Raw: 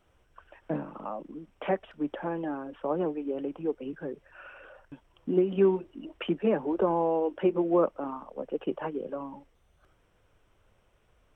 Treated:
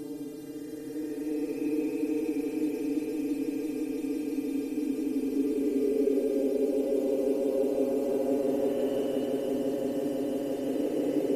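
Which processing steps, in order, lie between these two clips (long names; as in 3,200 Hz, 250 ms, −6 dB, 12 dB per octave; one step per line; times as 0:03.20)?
hum with harmonics 400 Hz, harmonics 35, −59 dBFS 0 dB per octave
extreme stretch with random phases 35×, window 0.05 s, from 0:03.13
echo that builds up and dies away 170 ms, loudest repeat 8, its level −11.5 dB
level +1 dB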